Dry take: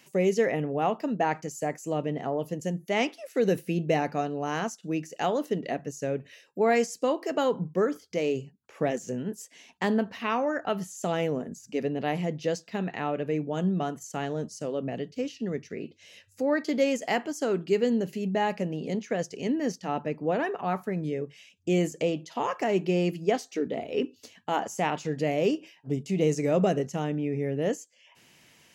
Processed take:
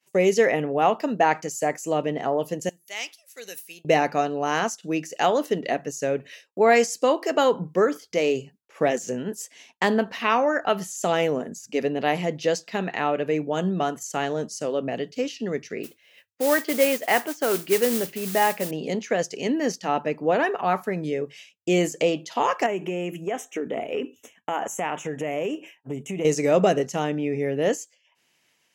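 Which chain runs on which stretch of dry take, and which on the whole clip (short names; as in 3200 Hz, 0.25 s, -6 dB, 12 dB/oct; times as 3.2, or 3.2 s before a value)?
2.69–3.85 pre-emphasis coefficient 0.97 + short-mantissa float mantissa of 8-bit
15.83–18.71 LPF 2400 Hz + modulation noise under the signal 19 dB + tilt +1.5 dB/oct
22.66–26.25 compressor, threshold -28 dBFS + Butterworth band-stop 4500 Hz, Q 1.3
whole clip: expander -47 dBFS; low shelf 240 Hz -12 dB; gain +8 dB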